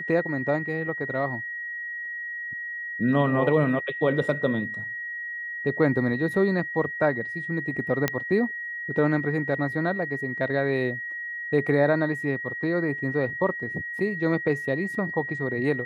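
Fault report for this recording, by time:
whistle 1,900 Hz −31 dBFS
0:08.08: click −8 dBFS

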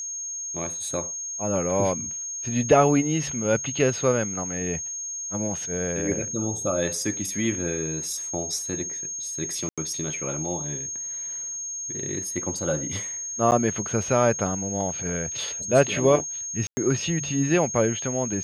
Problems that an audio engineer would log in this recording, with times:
whistle 6,500 Hz −30 dBFS
0:09.69–0:09.78: drop-out 86 ms
0:13.51–0:13.52: drop-out 9.5 ms
0:16.67–0:16.77: drop-out 100 ms

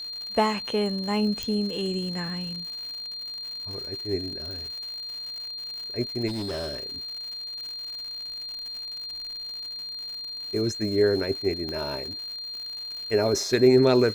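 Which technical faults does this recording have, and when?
surface crackle 160 per second −35 dBFS
whistle 4,200 Hz −33 dBFS
0:01.43: click −15 dBFS
0:04.51: click
0:06.27–0:06.87: clipping −27.5 dBFS
0:11.69: click −22 dBFS

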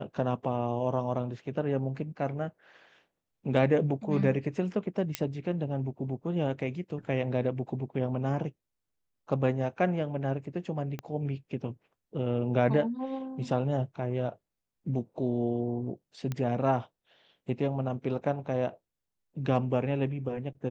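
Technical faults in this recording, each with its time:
0:05.15: click −11 dBFS
0:10.99: click −22 dBFS
0:16.32: click −20 dBFS

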